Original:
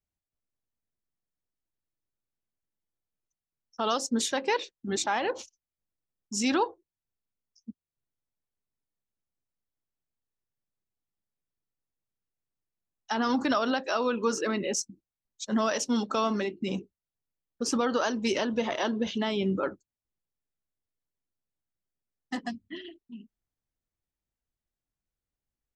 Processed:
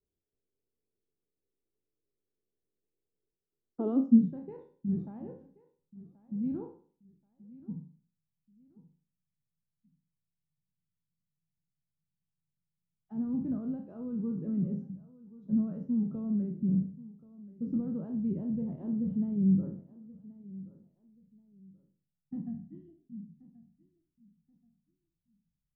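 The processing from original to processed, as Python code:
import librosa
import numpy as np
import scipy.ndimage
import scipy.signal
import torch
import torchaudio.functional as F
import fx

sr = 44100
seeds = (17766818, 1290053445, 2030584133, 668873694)

y = fx.spec_trails(x, sr, decay_s=0.45)
y = fx.echo_feedback(y, sr, ms=1080, feedback_pct=26, wet_db=-19)
y = fx.filter_sweep_lowpass(y, sr, from_hz=420.0, to_hz=160.0, start_s=3.68, end_s=4.31, q=5.4)
y = y * 10.0 ** (-1.0 / 20.0)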